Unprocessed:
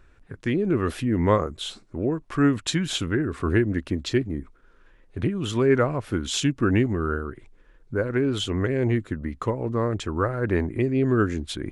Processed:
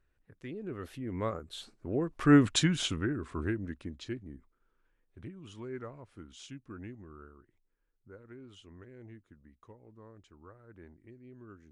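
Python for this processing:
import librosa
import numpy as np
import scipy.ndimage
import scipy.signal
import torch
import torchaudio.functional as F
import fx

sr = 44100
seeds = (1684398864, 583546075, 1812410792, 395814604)

y = fx.doppler_pass(x, sr, speed_mps=17, closest_m=4.4, pass_at_s=2.44)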